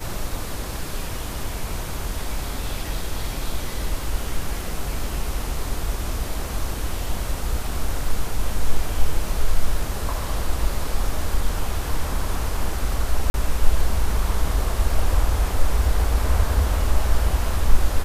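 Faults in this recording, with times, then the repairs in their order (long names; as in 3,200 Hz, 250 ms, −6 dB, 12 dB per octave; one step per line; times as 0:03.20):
0:13.30–0:13.34: drop-out 41 ms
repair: repair the gap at 0:13.30, 41 ms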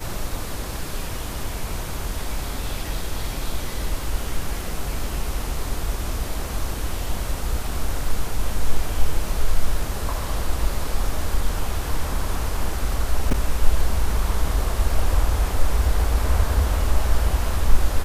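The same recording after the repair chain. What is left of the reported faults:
none of them is left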